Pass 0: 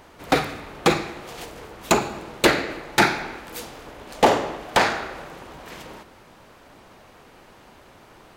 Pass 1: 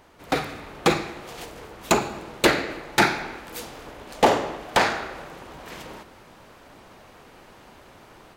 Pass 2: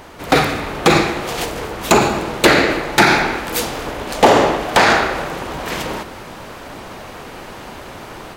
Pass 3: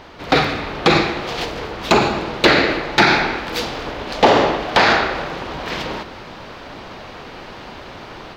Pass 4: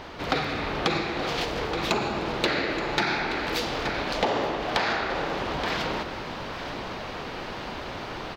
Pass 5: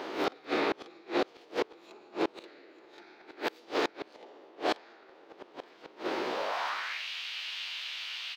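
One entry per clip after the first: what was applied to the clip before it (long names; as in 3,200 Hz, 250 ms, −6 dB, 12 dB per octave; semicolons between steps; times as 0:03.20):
automatic gain control gain up to 6 dB; level −5.5 dB
boost into a limiter +16.5 dB; level −1 dB
high shelf with overshoot 6,500 Hz −13 dB, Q 1.5; level −2 dB
single-tap delay 874 ms −16 dB; downward compressor 4 to 1, threshold −25 dBFS, peak gain reduction 14.5 dB
peak hold with a rise ahead of every peak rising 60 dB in 0.37 s; high-pass filter sweep 350 Hz → 2,900 Hz, 0:06.27–0:07.07; gate with flip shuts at −15 dBFS, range −30 dB; level −2 dB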